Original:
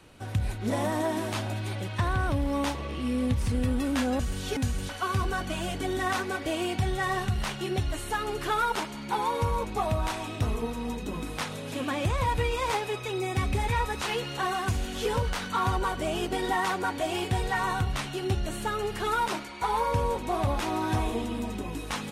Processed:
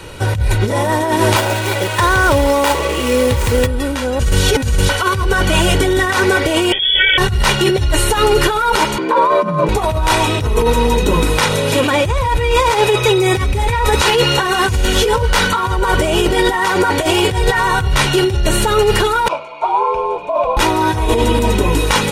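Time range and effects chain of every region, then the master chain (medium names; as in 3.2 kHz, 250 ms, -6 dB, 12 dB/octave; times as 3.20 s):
1.36–3.67 s: median filter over 9 samples + tone controls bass -12 dB, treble +7 dB
6.72–7.18 s: static phaser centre 2.2 kHz, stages 6 + frequency inversion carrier 3.4 kHz
8.98–9.69 s: low-pass 1.1 kHz 6 dB/octave + frequency shift +110 Hz
19.28–20.57 s: vowel filter a + peaking EQ 970 Hz +4 dB 0.34 oct + frequency shift -61 Hz
whole clip: compressor with a negative ratio -32 dBFS, ratio -1; comb 2.1 ms, depth 52%; loudness maximiser +18.5 dB; trim -1 dB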